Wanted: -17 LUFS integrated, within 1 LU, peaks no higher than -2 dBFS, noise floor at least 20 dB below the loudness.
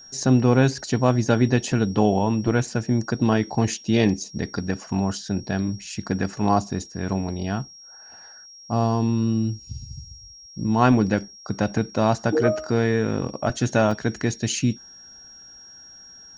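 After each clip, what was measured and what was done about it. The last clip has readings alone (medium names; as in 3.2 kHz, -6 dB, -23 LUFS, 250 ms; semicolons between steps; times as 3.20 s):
dropouts 1; longest dropout 3.3 ms; steady tone 5.6 kHz; tone level -43 dBFS; loudness -23.0 LUFS; peak level -3.0 dBFS; loudness target -17.0 LUFS
-> interpolate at 13.91 s, 3.3 ms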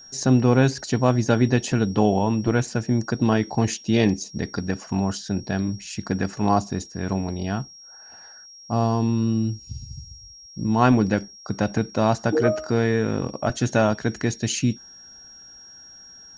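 dropouts 0; steady tone 5.6 kHz; tone level -43 dBFS
-> band-stop 5.6 kHz, Q 30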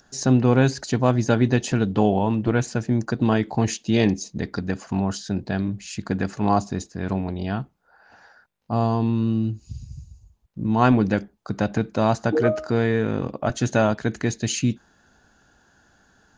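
steady tone not found; loudness -23.0 LUFS; peak level -3.0 dBFS; loudness target -17.0 LUFS
-> trim +6 dB; peak limiter -2 dBFS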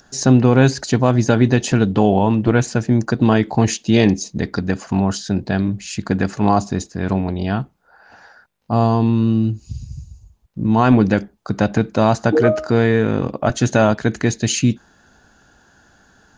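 loudness -17.5 LUFS; peak level -2.0 dBFS; noise floor -56 dBFS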